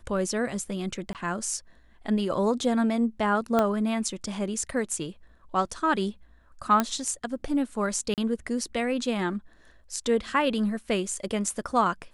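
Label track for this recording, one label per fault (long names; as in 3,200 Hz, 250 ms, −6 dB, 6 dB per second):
1.130000	1.150000	drop-out 18 ms
3.590000	3.590000	click −11 dBFS
6.800000	6.800000	click −9 dBFS
8.140000	8.180000	drop-out 38 ms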